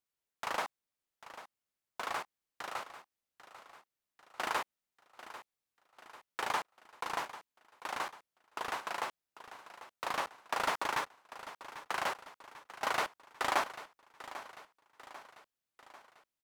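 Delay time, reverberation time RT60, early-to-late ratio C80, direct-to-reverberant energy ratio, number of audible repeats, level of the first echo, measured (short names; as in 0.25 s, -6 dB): 0.794 s, none, none, none, 4, -14.5 dB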